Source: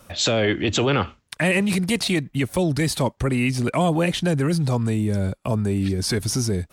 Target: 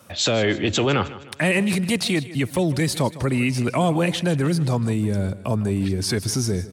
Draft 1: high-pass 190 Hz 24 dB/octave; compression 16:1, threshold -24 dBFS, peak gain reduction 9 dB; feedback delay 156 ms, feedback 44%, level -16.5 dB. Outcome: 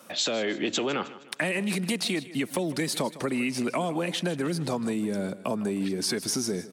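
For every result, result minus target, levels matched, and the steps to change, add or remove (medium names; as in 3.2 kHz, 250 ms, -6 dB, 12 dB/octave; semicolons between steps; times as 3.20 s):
compression: peak gain reduction +9 dB; 125 Hz band -7.0 dB
remove: compression 16:1, threshold -24 dBFS, peak gain reduction 9 dB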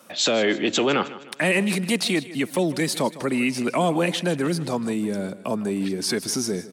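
125 Hz band -7.5 dB
change: high-pass 75 Hz 24 dB/octave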